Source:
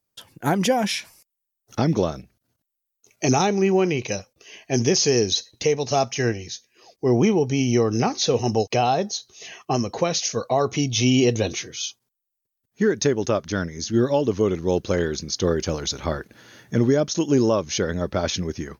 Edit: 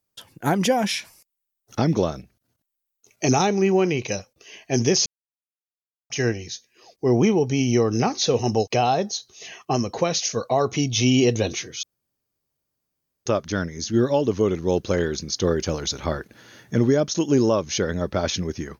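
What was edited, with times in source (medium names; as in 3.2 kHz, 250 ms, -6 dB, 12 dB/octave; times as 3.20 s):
5.06–6.10 s: mute
11.83–13.26 s: room tone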